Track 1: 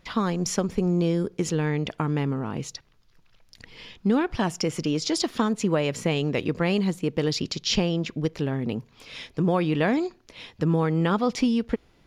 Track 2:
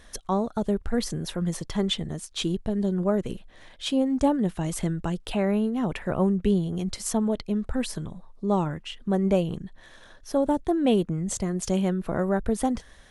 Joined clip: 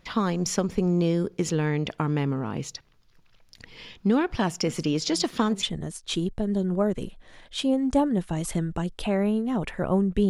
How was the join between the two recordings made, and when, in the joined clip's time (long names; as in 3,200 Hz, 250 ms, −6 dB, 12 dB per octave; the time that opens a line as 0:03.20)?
track 1
0:04.66: mix in track 2 from 0:00.94 0.97 s −17 dB
0:05.63: continue with track 2 from 0:01.91